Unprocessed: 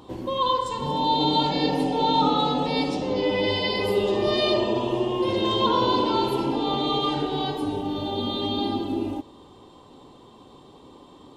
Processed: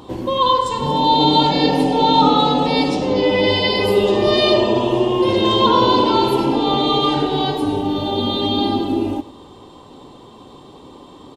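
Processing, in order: delay 101 ms -17 dB; trim +7.5 dB

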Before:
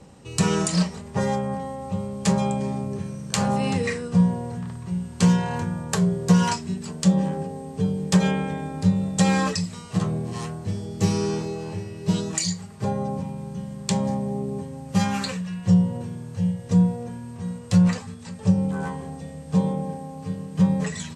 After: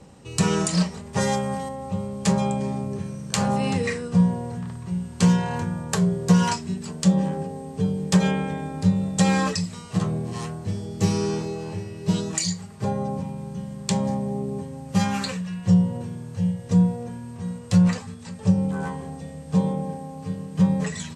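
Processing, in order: 1.13–1.69 s: treble shelf 2.2 kHz +10.5 dB

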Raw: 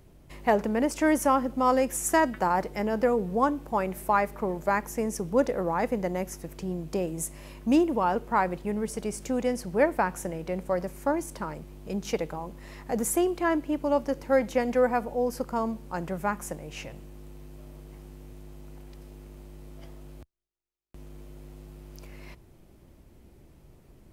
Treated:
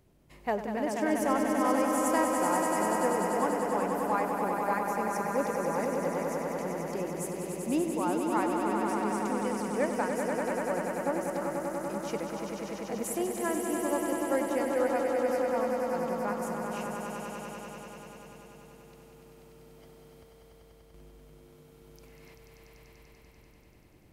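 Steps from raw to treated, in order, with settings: bass shelf 65 Hz -7.5 dB; echo with a slow build-up 97 ms, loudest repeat 5, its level -6 dB; trim -7.5 dB

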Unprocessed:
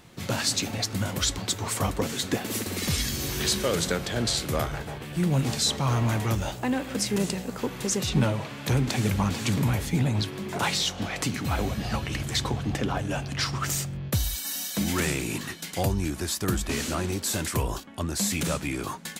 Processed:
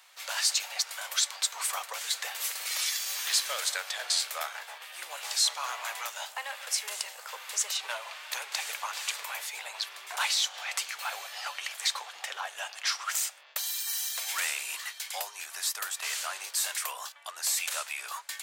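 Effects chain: Bessel high-pass 1.1 kHz, order 8; speed mistake 24 fps film run at 25 fps

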